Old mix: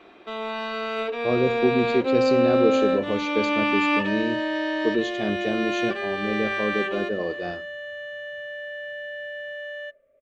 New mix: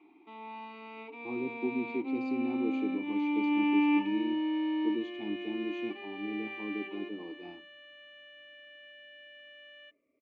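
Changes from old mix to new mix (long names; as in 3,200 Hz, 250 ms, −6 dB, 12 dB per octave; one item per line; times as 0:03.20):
second sound +11.5 dB
master: add formant filter u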